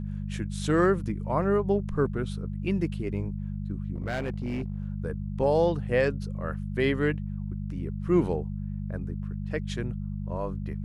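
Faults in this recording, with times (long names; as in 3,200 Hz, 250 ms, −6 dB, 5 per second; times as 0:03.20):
mains hum 50 Hz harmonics 4 −33 dBFS
0:03.96–0:04.84: clipping −26.5 dBFS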